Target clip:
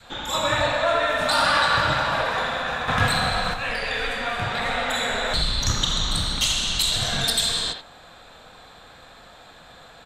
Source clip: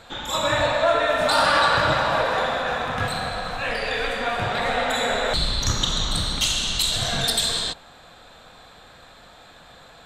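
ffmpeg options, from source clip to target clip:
-filter_complex "[0:a]adynamicequalizer=threshold=0.0158:dfrequency=500:dqfactor=0.78:tfrequency=500:tqfactor=0.78:attack=5:release=100:ratio=0.375:range=3:mode=cutabove:tftype=bell,asplit=2[s0][s1];[s1]adelay=80,highpass=300,lowpass=3400,asoftclip=type=hard:threshold=0.188,volume=0.501[s2];[s0][s2]amix=inputs=2:normalize=0,asettb=1/sr,asplit=3[s3][s4][s5];[s3]atrim=end=2.884[s6];[s4]atrim=start=2.88:end=3.54,asetpts=PTS-STARTPTS,afade=t=in:d=0.004:c=qsin,afade=t=out:st=0.656:d=0.004:c=qsin,acontrast=57[s7];[s5]atrim=start=3.536[s8];[s6][s7]acrossfade=d=0.004:c1=hsin:c2=qsin[s9];[s9][s8]acrossfade=d=0.004:c1=qsin:c2=hsin"

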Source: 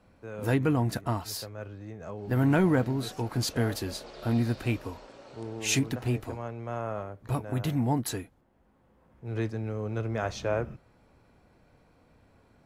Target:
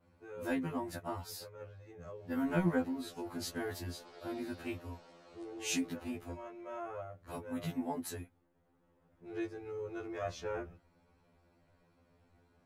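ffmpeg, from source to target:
-af "adynamicequalizer=threshold=0.00316:dfrequency=5000:dqfactor=0.76:tfrequency=5000:tqfactor=0.76:attack=5:release=100:ratio=0.375:range=2:mode=cutabove:tftype=bell,afftfilt=real='re*2*eq(mod(b,4),0)':imag='im*2*eq(mod(b,4),0)':win_size=2048:overlap=0.75,volume=0.531"

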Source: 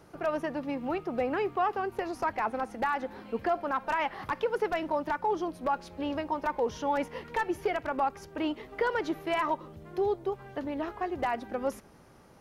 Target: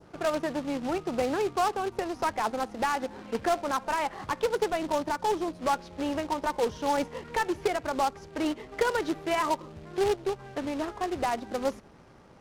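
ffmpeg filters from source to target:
-af "acrusher=bits=2:mode=log:mix=0:aa=0.000001,adynamicequalizer=threshold=0.00562:dfrequency=2100:dqfactor=0.86:tfrequency=2100:tqfactor=0.86:attack=5:release=100:ratio=0.375:range=2.5:mode=cutabove:tftype=bell,adynamicsmooth=sensitivity=6:basefreq=5800,volume=1.26"

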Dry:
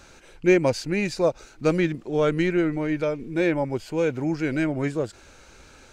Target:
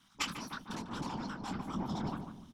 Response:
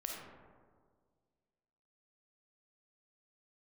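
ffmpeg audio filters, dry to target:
-filter_complex "[0:a]aeval=exprs='0.473*(cos(1*acos(clip(val(0)/0.473,-1,1)))-cos(1*PI/2))+0.237*(cos(3*acos(clip(val(0)/0.473,-1,1)))-cos(3*PI/2))':c=same,lowpass=3300,asubboost=boost=11:cutoff=170,highpass=53,bandreject=f=830:w=12[s0];[1:a]atrim=start_sample=2205,atrim=end_sample=3087[s1];[s0][s1]afir=irnorm=-1:irlink=0,afftfilt=real='hypot(re,im)*cos(2*PI*random(0))':imag='hypot(re,im)*sin(2*PI*random(1))':win_size=512:overlap=0.75,asetrate=103194,aresample=44100,firequalizer=gain_entry='entry(110,0);entry(200,8);entry(430,-13);entry(620,-10);entry(970,3)':delay=0.05:min_phase=1,asplit=2[s2][s3];[s3]adelay=147,lowpass=f=1700:p=1,volume=0.447,asplit=2[s4][s5];[s5]adelay=147,lowpass=f=1700:p=1,volume=0.29,asplit=2[s6][s7];[s7]adelay=147,lowpass=f=1700:p=1,volume=0.29,asplit=2[s8][s9];[s9]adelay=147,lowpass=f=1700:p=1,volume=0.29[s10];[s2][s4][s6][s8][s10]amix=inputs=5:normalize=0,volume=0.708"

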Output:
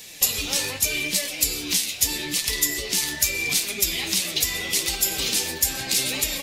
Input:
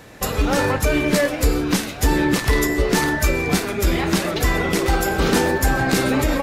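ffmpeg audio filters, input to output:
-af "flanger=delay=4.3:depth=8.9:regen=39:speed=0.8:shape=triangular,alimiter=limit=0.126:level=0:latency=1:release=399,aexciter=amount=7.6:drive=7.3:freq=2200,volume=0.447"

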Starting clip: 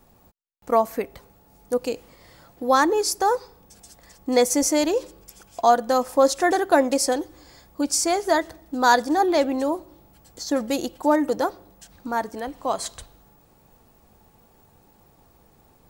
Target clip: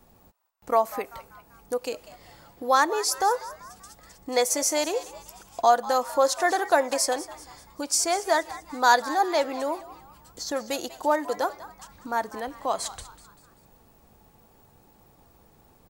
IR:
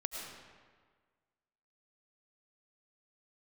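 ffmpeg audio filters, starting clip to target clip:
-filter_complex "[0:a]acrossover=split=480[s0][s1];[s0]acompressor=threshold=0.0141:ratio=6[s2];[s1]asplit=5[s3][s4][s5][s6][s7];[s4]adelay=194,afreqshift=120,volume=0.158[s8];[s5]adelay=388,afreqshift=240,volume=0.0716[s9];[s6]adelay=582,afreqshift=360,volume=0.032[s10];[s7]adelay=776,afreqshift=480,volume=0.0145[s11];[s3][s8][s9][s10][s11]amix=inputs=5:normalize=0[s12];[s2][s12]amix=inputs=2:normalize=0,volume=0.891"

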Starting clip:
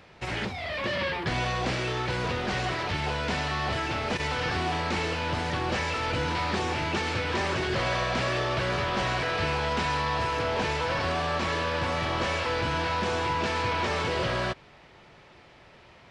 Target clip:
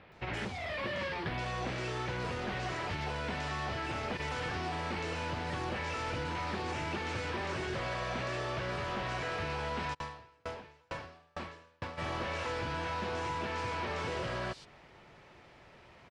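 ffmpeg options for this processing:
-filter_complex "[0:a]acompressor=threshold=0.0355:ratio=6,acrossover=split=3900[s0][s1];[s1]adelay=120[s2];[s0][s2]amix=inputs=2:normalize=0,asplit=3[s3][s4][s5];[s3]afade=t=out:st=9.93:d=0.02[s6];[s4]aeval=exprs='val(0)*pow(10,-38*if(lt(mod(2.2*n/s,1),2*abs(2.2)/1000),1-mod(2.2*n/s,1)/(2*abs(2.2)/1000),(mod(2.2*n/s,1)-2*abs(2.2)/1000)/(1-2*abs(2.2)/1000))/20)':c=same,afade=t=in:st=9.93:d=0.02,afade=t=out:st=11.97:d=0.02[s7];[s5]afade=t=in:st=11.97:d=0.02[s8];[s6][s7][s8]amix=inputs=3:normalize=0,volume=0.668"

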